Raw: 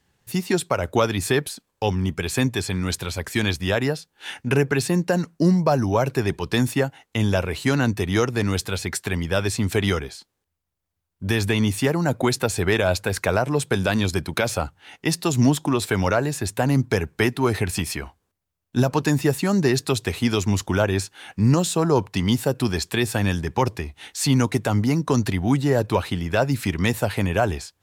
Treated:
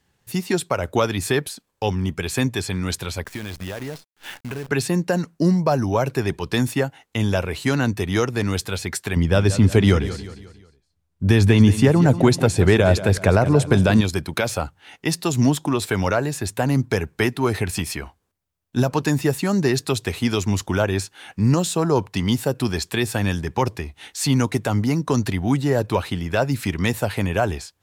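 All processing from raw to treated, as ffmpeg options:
-filter_complex "[0:a]asettb=1/sr,asplit=3[a][b][c];[a]atrim=end=3.244[d];[b]atrim=start=3.24:end=4.69,asetpts=PTS-STARTPTS,afade=t=in:d=0.004:c=qsin,afade=t=out:st=1.446:d=0.004:c=qsin,lowpass=f=2.7k:p=1,acompressor=threshold=-27dB:ratio=5:attack=3.2:release=140:knee=1:detection=peak,acrusher=bits=7:dc=4:mix=0:aa=0.000001[e];[c]atrim=start=4.686[f];[d][e]acrossfade=d=0.004:c1=hsin:c2=qsin[g];[g][f]acrossfade=d=0.004:c1=qsin:c2=hsin,asettb=1/sr,asplit=3[h][i][j];[h]atrim=end=9.164[k];[i]atrim=start=9.16:end=14.01,asetpts=PTS-STARTPTS,afade=t=in:d=0.004:c=qsin,afade=t=out:st=4.846:d=0.004:c=qsin,lowpass=11k,lowshelf=f=430:g=9,aecho=1:1:179|358|537|716:0.224|0.0963|0.0414|0.0178,atrim=end_sample=213885[l];[j]atrim=start=14.006[m];[k][l]acrossfade=d=0.004:c1=hsin:c2=qsin[n];[n][m]acrossfade=d=0.004:c1=qsin:c2=hsin"

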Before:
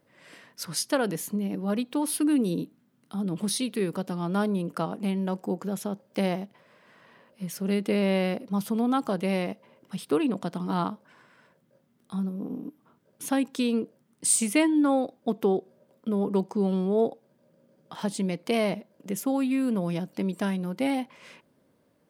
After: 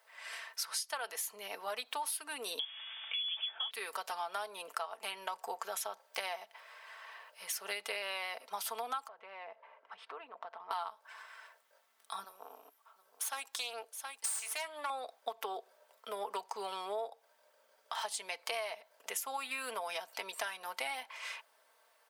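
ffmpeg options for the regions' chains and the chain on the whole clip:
-filter_complex "[0:a]asettb=1/sr,asplit=3[a][b][c];[a]atrim=end=2.594[d];[b]atrim=start=2.59:end=3.71,asetpts=PTS-STARTPTS,afade=t=in:d=0.004:c=qsin,afade=t=out:st=1.116:d=0.004:c=qsin,aeval=exprs='val(0)+0.5*0.00631*sgn(val(0))':c=same,equalizer=f=240:w=2.3:g=-8,lowpass=f=3.1k:t=q:w=0.5098,lowpass=f=3.1k:t=q:w=0.6013,lowpass=f=3.1k:t=q:w=0.9,lowpass=f=3.1k:t=q:w=2.563,afreqshift=-3600[e];[c]atrim=start=3.706[f];[d][e]acrossfade=d=0.004:c1=hsin:c2=qsin[g];[g][f]acrossfade=d=0.004:c1=qsin:c2=hsin,asettb=1/sr,asplit=3[h][i][j];[h]atrim=end=9.084[k];[i]atrim=start=9.08:end=10.71,asetpts=PTS-STARTPTS,afade=t=in:d=0.004:c=qsin,afade=t=out:st=1.626:d=0.004:c=qsin,lowpass=1.6k,acompressor=threshold=-42dB:ratio=3:attack=3.2:release=140:knee=1:detection=peak[l];[j]atrim=start=10.706[m];[k][l]acrossfade=d=0.004:c1=hsin:c2=qsin[n];[n][m]acrossfade=d=0.004:c1=qsin:c2=hsin,asettb=1/sr,asplit=3[o][p][q];[o]atrim=end=12.244[r];[p]atrim=start=12.24:end=14.9,asetpts=PTS-STARTPTS,afade=t=in:d=0.004:c=qsin,afade=t=out:st=2.656:d=0.004:c=qsin,bass=f=250:g=-10,treble=f=4k:g=4,aecho=1:1:720:0.2,atrim=end_sample=117306,aeval=exprs='(tanh(15.8*val(0)+0.8)-tanh(0.8))/15.8':c=same[s];[q]atrim=start=14.896[t];[r][s]acrossfade=d=0.004:c1=hsin:c2=qsin[u];[u][t]acrossfade=d=0.004:c1=qsin:c2=hsin,highpass=f=750:w=0.5412,highpass=f=750:w=1.3066,aecho=1:1:4.5:0.5,acompressor=threshold=-41dB:ratio=10,volume=6dB"

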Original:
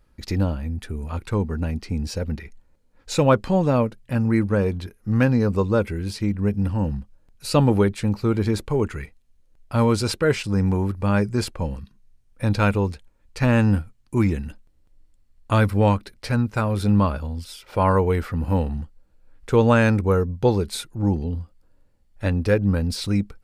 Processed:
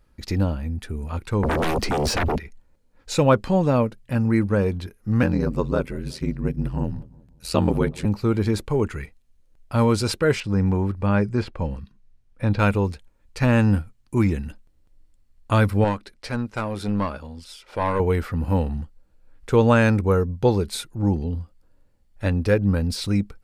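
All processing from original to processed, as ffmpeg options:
-filter_complex "[0:a]asettb=1/sr,asplit=3[a][b][c];[a]atrim=end=1.434[d];[b]atrim=start=1.43:end=2.38,asetpts=PTS-STARTPTS,afade=t=in:d=0.004:c=qsin,afade=t=out:st=0.946:d=0.004:c=qsin,acrossover=split=160|1300|3100[e][f][g][h];[e]acompressor=threshold=-34dB:ratio=3[i];[f]acompressor=threshold=-31dB:ratio=3[j];[g]acompressor=threshold=-56dB:ratio=3[k];[h]acompressor=threshold=-49dB:ratio=3[l];[i][j][k][l]amix=inputs=4:normalize=0,aeval=exprs='0.119*sin(PI/2*6.31*val(0)/0.119)':c=same[m];[c]atrim=start=2.376[n];[d][m]acrossfade=d=0.004:c1=hsin:c2=qsin[o];[o][n]acrossfade=d=0.004:c1=qsin:c2=hsin,asettb=1/sr,asplit=3[p][q][r];[p]atrim=end=5.224[s];[q]atrim=start=5.22:end=8.05,asetpts=PTS-STARTPTS,afade=t=in:d=0.004:c=qsin,afade=t=out:st=2.826:d=0.004:c=qsin,aeval=exprs='val(0)*sin(2*PI*42*n/s)':c=same,asplit=2[t][u];[u]adelay=182,lowpass=f=1.1k:p=1,volume=-20.5dB,asplit=2[v][w];[w]adelay=182,lowpass=f=1.1k:p=1,volume=0.46,asplit=2[x][y];[y]adelay=182,lowpass=f=1.1k:p=1,volume=0.46[z];[t][v][x][z]amix=inputs=4:normalize=0,atrim=end_sample=124803[aa];[r]atrim=start=8.046[ab];[s][aa]acrossfade=d=0.004:c1=hsin:c2=qsin[ac];[ac][ab]acrossfade=d=0.004:c1=qsin:c2=hsin,asettb=1/sr,asplit=3[ad][ae][af];[ad]atrim=end=10.404[ag];[ae]atrim=start=10.4:end=12.59,asetpts=PTS-STARTPTS,afade=t=in:d=0.004:c=qsin,afade=t=out:st=2.186:d=0.004:c=qsin,acrossover=split=3900[ah][ai];[ai]acompressor=threshold=-48dB:ratio=4:attack=1:release=60[aj];[ah][aj]amix=inputs=2:normalize=0,highshelf=f=7.3k:g=-11.5[ak];[af]atrim=start=12.586[al];[ag][ak]acrossfade=d=0.004:c1=hsin:c2=qsin[am];[am][al]acrossfade=d=0.004:c1=qsin:c2=hsin,asettb=1/sr,asplit=3[an][ao][ap];[an]atrim=end=15.844[aq];[ao]atrim=start=15.84:end=18,asetpts=PTS-STARTPTS,afade=t=in:d=0.004:c=qsin,afade=t=out:st=2.156:d=0.004:c=qsin,lowpass=10k,equalizer=f=83:w=0.7:g=-9,aeval=exprs='(tanh(4.47*val(0)+0.5)-tanh(0.5))/4.47':c=same[ar];[ap]atrim=start=17.996[as];[aq][ar]acrossfade=d=0.004:c1=hsin:c2=qsin[at];[at][as]acrossfade=d=0.004:c1=qsin:c2=hsin"

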